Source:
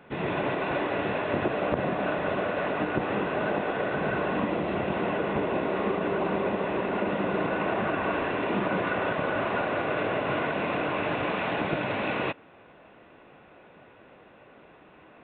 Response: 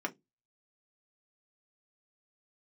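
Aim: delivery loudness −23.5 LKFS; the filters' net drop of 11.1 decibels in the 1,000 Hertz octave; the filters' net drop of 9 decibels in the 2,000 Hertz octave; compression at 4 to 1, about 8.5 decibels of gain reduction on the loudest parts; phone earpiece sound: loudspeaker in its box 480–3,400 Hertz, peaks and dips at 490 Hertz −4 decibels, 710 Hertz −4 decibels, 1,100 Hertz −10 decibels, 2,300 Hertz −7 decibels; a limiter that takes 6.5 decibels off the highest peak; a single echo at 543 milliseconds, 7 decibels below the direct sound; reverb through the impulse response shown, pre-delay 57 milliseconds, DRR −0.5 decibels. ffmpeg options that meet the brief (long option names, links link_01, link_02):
-filter_complex "[0:a]equalizer=frequency=1000:width_type=o:gain=-6,equalizer=frequency=2000:width_type=o:gain=-6,acompressor=threshold=-35dB:ratio=4,alimiter=level_in=5.5dB:limit=-24dB:level=0:latency=1,volume=-5.5dB,aecho=1:1:543:0.447,asplit=2[link_01][link_02];[1:a]atrim=start_sample=2205,adelay=57[link_03];[link_02][link_03]afir=irnorm=-1:irlink=0,volume=-3.5dB[link_04];[link_01][link_04]amix=inputs=2:normalize=0,highpass=480,equalizer=frequency=490:width_type=q:width=4:gain=-4,equalizer=frequency=710:width_type=q:width=4:gain=-4,equalizer=frequency=1100:width_type=q:width=4:gain=-10,equalizer=frequency=2300:width_type=q:width=4:gain=-7,lowpass=frequency=3400:width=0.5412,lowpass=frequency=3400:width=1.3066,volume=17.5dB"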